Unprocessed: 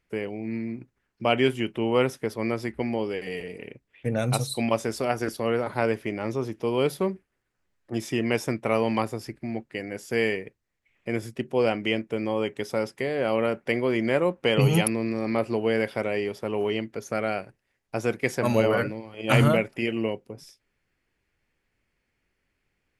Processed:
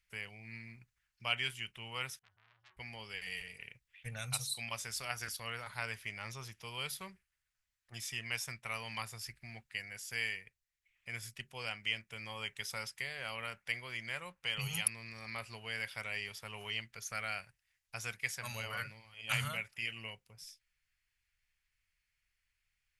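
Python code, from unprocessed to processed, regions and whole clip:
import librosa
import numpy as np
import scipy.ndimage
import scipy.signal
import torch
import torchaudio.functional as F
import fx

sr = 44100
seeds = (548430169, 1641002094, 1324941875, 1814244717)

y = fx.chain(x, sr, fx.peak_eq(hz=130.0, db=13.0, octaves=0.74),
    fx.octave_resonator(note='F#', decay_s=0.4),
    fx.transformer_sat(knee_hz=2300.0), at=(2.19, 2.77))
y = fx.peak_eq(y, sr, hz=530.0, db=-8.0, octaves=1.7)
y = fx.rider(y, sr, range_db=3, speed_s=0.5)
y = fx.tone_stack(y, sr, knobs='10-0-10')
y = y * 10.0 ** (-1.5 / 20.0)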